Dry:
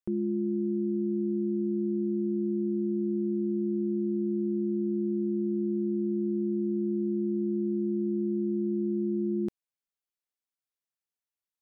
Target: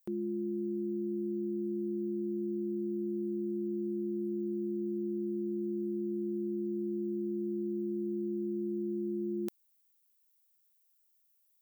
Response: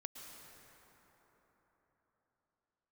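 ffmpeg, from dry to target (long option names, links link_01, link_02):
-af "aemphasis=mode=production:type=riaa"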